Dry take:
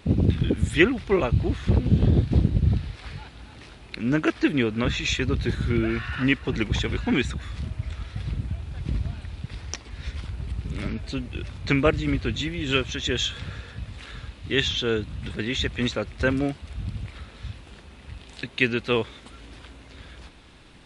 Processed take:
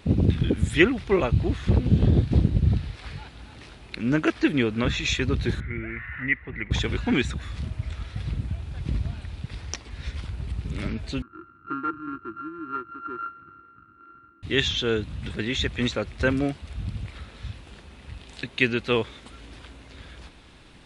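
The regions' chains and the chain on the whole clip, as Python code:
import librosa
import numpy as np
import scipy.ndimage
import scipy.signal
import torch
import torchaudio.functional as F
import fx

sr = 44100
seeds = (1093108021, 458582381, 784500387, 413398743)

y = fx.chain(x, sr, fx.ladder_lowpass(hz=2100.0, resonance_pct=85),
    fx.low_shelf(hz=130.0, db=7.0), at=(5.6, 6.71))
y = fx.chain(y, sr, fx.sample_sort(block=32),
    fx.double_bandpass(hz=660.0, octaves=2.0),
    fx.air_absorb(metres=340.0), at=(11.22, 14.43))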